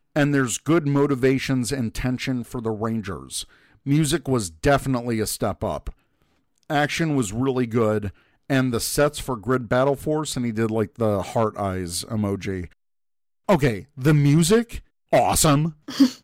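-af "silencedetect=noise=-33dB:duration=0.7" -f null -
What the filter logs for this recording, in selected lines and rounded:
silence_start: 5.90
silence_end: 6.70 | silence_duration: 0.80
silence_start: 12.65
silence_end: 13.49 | silence_duration: 0.84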